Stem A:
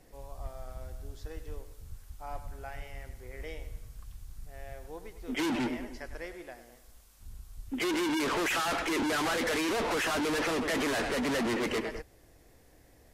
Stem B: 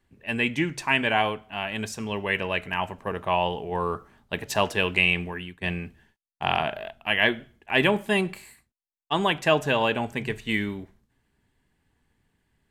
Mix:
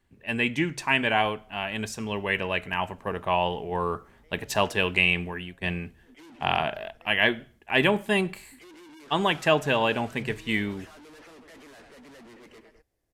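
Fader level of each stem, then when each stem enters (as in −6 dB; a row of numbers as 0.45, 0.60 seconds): −19.5, −0.5 decibels; 0.80, 0.00 seconds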